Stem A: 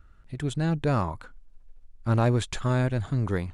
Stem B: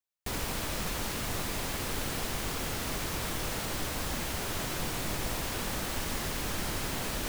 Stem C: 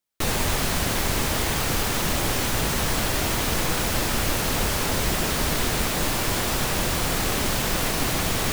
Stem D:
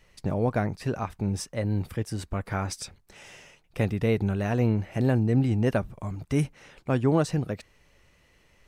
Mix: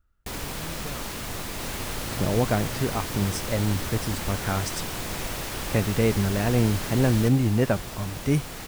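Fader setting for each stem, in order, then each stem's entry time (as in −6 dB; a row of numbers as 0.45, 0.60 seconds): −15.0, +0.5, −13.5, +2.0 decibels; 0.00, 0.00, 1.40, 1.95 seconds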